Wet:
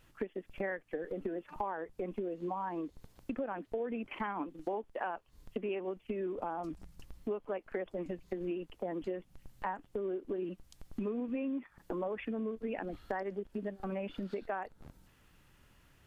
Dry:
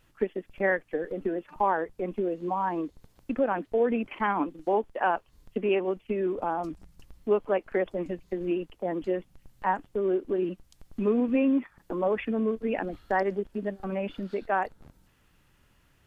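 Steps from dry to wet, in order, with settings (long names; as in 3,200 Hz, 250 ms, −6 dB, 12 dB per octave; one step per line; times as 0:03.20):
downward compressor 5 to 1, threshold −35 dBFS, peak gain reduction 14.5 dB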